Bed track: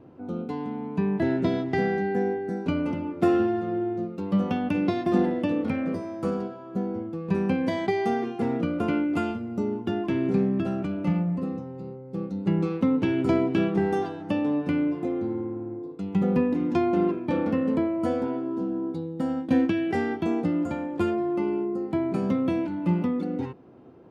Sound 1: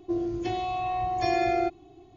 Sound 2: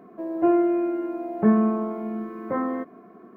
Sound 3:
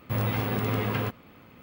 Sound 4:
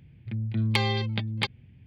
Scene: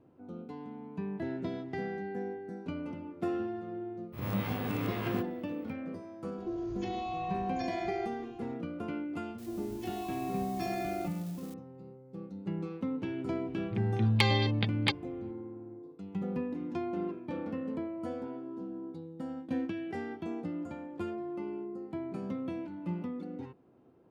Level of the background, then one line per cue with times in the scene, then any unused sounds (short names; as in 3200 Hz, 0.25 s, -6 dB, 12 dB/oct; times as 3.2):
bed track -12 dB
4.12 add 3 -9.5 dB, fades 0.02 s + spectral swells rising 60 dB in 0.46 s
6.38 add 1 -1.5 dB + compressor, threshold -32 dBFS
9.38 add 1 -11 dB + switching spikes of -29.5 dBFS
13.45 add 4 -1 dB
not used: 2